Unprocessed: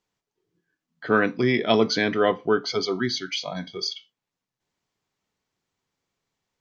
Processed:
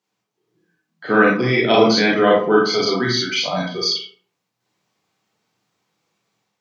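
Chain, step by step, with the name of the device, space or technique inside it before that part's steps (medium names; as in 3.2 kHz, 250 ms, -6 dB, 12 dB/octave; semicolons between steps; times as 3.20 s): far laptop microphone (reverberation RT60 0.45 s, pre-delay 29 ms, DRR -4.5 dB; high-pass 120 Hz 24 dB/octave; level rider gain up to 5 dB)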